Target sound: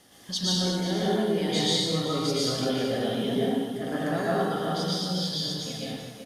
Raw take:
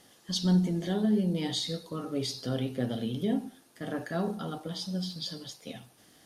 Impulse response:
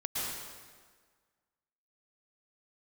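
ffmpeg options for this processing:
-filter_complex "[0:a]acrossover=split=370|5400[link_01][link_02][link_03];[link_01]acompressor=threshold=-39dB:ratio=6[link_04];[link_04][link_02][link_03]amix=inputs=3:normalize=0,asplit=2[link_05][link_06];[link_06]adelay=379,volume=-7dB,highshelf=frequency=4000:gain=-8.53[link_07];[link_05][link_07]amix=inputs=2:normalize=0[link_08];[1:a]atrim=start_sample=2205,afade=type=out:start_time=0.44:duration=0.01,atrim=end_sample=19845[link_09];[link_08][link_09]afir=irnorm=-1:irlink=0,volume=3.5dB"

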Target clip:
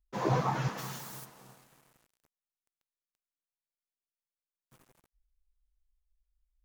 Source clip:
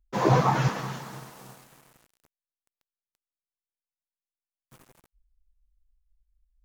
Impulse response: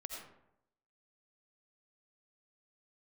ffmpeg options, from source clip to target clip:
-filter_complex "[0:a]asplit=3[link_01][link_02][link_03];[link_01]afade=type=out:start_time=0.77:duration=0.02[link_04];[link_02]aemphasis=mode=production:type=75kf,afade=type=in:start_time=0.77:duration=0.02,afade=type=out:start_time=1.24:duration=0.02[link_05];[link_03]afade=type=in:start_time=1.24:duration=0.02[link_06];[link_04][link_05][link_06]amix=inputs=3:normalize=0,volume=-8dB"

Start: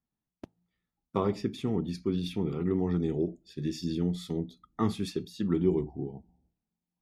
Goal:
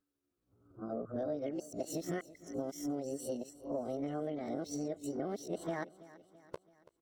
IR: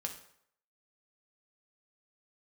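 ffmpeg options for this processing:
-filter_complex "[0:a]areverse,asetrate=72056,aresample=44100,atempo=0.612027,acompressor=threshold=-37dB:ratio=6,asplit=2[link_01][link_02];[link_02]aecho=0:1:332|664|996|1328:0.119|0.0618|0.0321|0.0167[link_03];[link_01][link_03]amix=inputs=2:normalize=0,volume=2dB"

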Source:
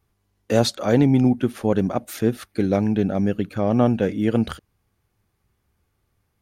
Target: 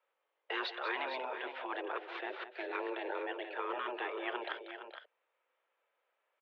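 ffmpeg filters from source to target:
ffmpeg -i in.wav -af "highpass=frequency=370:width_type=q:width=0.5412,highpass=frequency=370:width_type=q:width=1.307,lowpass=frequency=3200:width_type=q:width=0.5176,lowpass=frequency=3200:width_type=q:width=0.7071,lowpass=frequency=3200:width_type=q:width=1.932,afreqshift=130,afftfilt=real='re*lt(hypot(re,im),0.178)':imag='im*lt(hypot(re,im),0.178)':win_size=1024:overlap=0.75,aecho=1:1:188|433|462:0.266|0.141|0.335,volume=-4dB" out.wav

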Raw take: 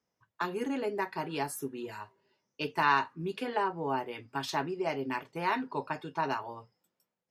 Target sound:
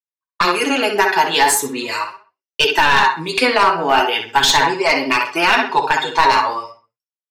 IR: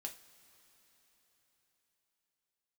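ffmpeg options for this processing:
-filter_complex "[0:a]afftfilt=real='re*pow(10,8/40*sin(2*PI*(1*log(max(b,1)*sr/1024/100)/log(2)-(0.65)*(pts-256)/sr)))':imag='im*pow(10,8/40*sin(2*PI*(1*log(max(b,1)*sr/1024/100)/log(2)-(0.65)*(pts-256)/sr)))':win_size=1024:overlap=0.75,equalizer=frequency=5400:width=0.52:gain=7,agate=range=-47dB:threshold=-54dB:ratio=16:detection=peak,highpass=frequency=990:poles=1,asplit=2[link_01][link_02];[link_02]adelay=64,lowpass=frequency=3600:poles=1,volume=-6dB,asplit=2[link_03][link_04];[link_04]adelay=64,lowpass=frequency=3600:poles=1,volume=0.34,asplit=2[link_05][link_06];[link_06]adelay=64,lowpass=frequency=3600:poles=1,volume=0.34,asplit=2[link_07][link_08];[link_08]adelay=64,lowpass=frequency=3600:poles=1,volume=0.34[link_09];[link_03][link_05][link_07][link_09]amix=inputs=4:normalize=0[link_10];[link_01][link_10]amix=inputs=2:normalize=0,aeval=exprs='clip(val(0),-1,0.0335)':channel_layout=same,flanger=delay=1.9:depth=9.6:regen=18:speed=0.38:shape=triangular,highshelf=frequency=8200:gain=-3.5,alimiter=level_in=26.5dB:limit=-1dB:release=50:level=0:latency=1,volume=-1dB"

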